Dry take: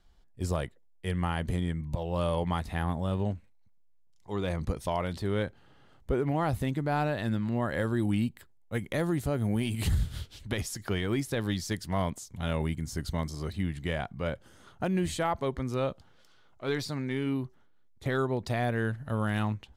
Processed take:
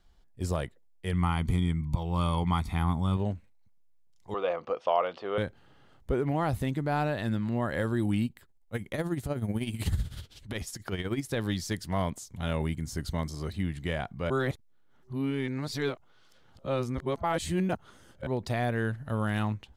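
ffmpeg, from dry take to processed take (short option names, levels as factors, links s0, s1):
-filter_complex "[0:a]asettb=1/sr,asplit=3[s0][s1][s2];[s0]atrim=end=1.134[s3];[s1]atrim=start=1.13:end=3.17,asetpts=PTS-STARTPTS,afade=t=in:d=0.004:c=qsin,afade=t=out:st=2.036:d=0.004:c=qsin,aecho=1:1:0.9:0.65,atrim=end_sample=89964[s4];[s2]atrim=start=3.166[s5];[s3][s4]acrossfade=d=0.004:c1=hsin:c2=qsin[s6];[s6][s5]acrossfade=d=0.004:c1=qsin:c2=hsin,asettb=1/sr,asplit=3[s7][s8][s9];[s7]atrim=end=4.344[s10];[s8]atrim=start=4.34:end=5.38,asetpts=PTS-STARTPTS,afade=t=in:d=0.004:c=qsin,afade=t=out:st=1.036:d=0.004:c=qsin,highpass=460,equalizer=f=500:t=q:w=4:g=10,equalizer=f=720:t=q:w=4:g=7,equalizer=f=1200:t=q:w=4:g=9,equalizer=f=1900:t=q:w=4:g=-4,equalizer=f=2800:t=q:w=4:g=6,equalizer=f=4000:t=q:w=4:g=-9,lowpass=f=4400:w=0.5412,lowpass=f=4400:w=1.3066[s11];[s9]atrim=start=5.376[s12];[s10][s11]acrossfade=d=0.004:c1=hsin:c2=qsin[s13];[s13][s12]acrossfade=d=0.004:c1=qsin:c2=hsin,asplit=3[s14][s15][s16];[s14]afade=t=out:st=8.23:d=0.02[s17];[s15]tremolo=f=16:d=0.63,afade=t=in:st=8.23:d=0.02,afade=t=out:st=11.29:d=0.02[s18];[s16]afade=t=in:st=11.29:d=0.02[s19];[s17][s18][s19]amix=inputs=3:normalize=0,asplit=3[s20][s21][s22];[s20]atrim=end=14.302[s23];[s21]atrim=start=14.298:end=18.272,asetpts=PTS-STARTPTS,areverse[s24];[s22]atrim=start=18.268[s25];[s23][s24]acrossfade=d=0.004:c1=hsin:c2=hsin[s26];[s26][s25]acrossfade=d=0.004:c1=hsin:c2=hsin"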